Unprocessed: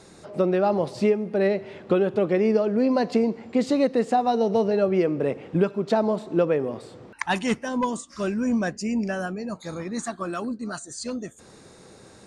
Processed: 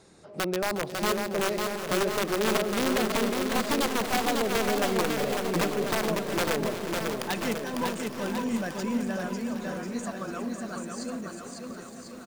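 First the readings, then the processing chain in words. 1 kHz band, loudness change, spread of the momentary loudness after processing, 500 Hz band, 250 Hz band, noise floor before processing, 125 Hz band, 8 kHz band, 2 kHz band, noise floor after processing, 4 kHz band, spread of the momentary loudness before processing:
-2.0 dB, -4.0 dB, 10 LU, -6.0 dB, -5.5 dB, -50 dBFS, -4.5 dB, +5.5 dB, +2.5 dB, -43 dBFS, +6.5 dB, 11 LU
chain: wrapped overs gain 14 dB; bouncing-ball echo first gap 0.55 s, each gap 0.9×, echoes 5; lo-fi delay 0.362 s, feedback 80%, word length 7-bit, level -12 dB; gain -7 dB

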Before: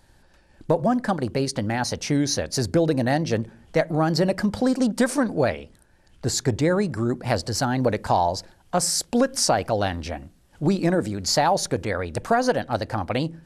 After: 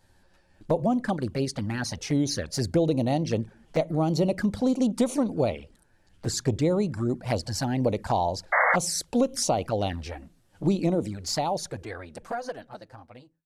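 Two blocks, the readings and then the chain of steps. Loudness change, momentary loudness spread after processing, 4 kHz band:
-3.5 dB, 12 LU, -6.0 dB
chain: ending faded out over 2.78 s; envelope flanger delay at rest 11.9 ms, full sweep at -18.5 dBFS; painted sound noise, 8.52–8.76, 470–2200 Hz -19 dBFS; gain -2 dB

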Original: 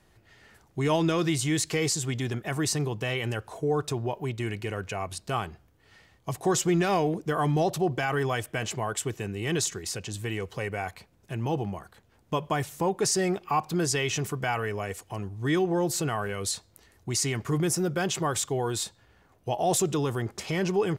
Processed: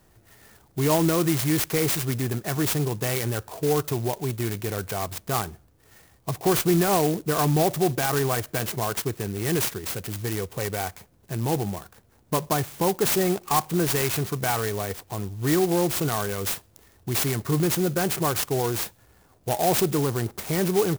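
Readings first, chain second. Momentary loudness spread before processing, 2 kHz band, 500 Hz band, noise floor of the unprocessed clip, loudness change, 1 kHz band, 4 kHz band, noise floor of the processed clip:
9 LU, +1.0 dB, +3.0 dB, -63 dBFS, +3.5 dB, +2.5 dB, +2.0 dB, -59 dBFS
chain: clock jitter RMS 0.089 ms; gain +3.5 dB

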